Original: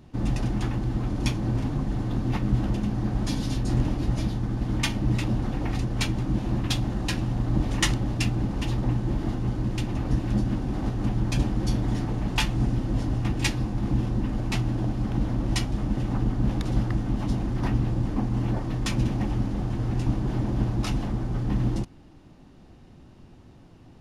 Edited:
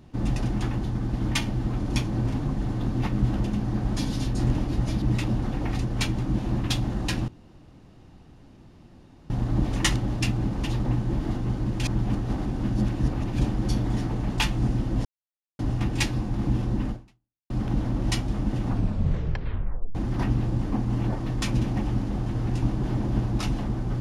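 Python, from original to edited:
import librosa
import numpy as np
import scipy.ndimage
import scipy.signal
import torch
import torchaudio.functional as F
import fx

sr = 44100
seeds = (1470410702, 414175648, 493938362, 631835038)

y = fx.edit(x, sr, fx.move(start_s=4.32, length_s=0.7, to_s=0.84),
    fx.insert_room_tone(at_s=7.28, length_s=2.02),
    fx.reverse_span(start_s=9.81, length_s=1.55),
    fx.insert_silence(at_s=13.03, length_s=0.54),
    fx.fade_out_span(start_s=14.34, length_s=0.6, curve='exp'),
    fx.tape_stop(start_s=16.11, length_s=1.28), tone=tone)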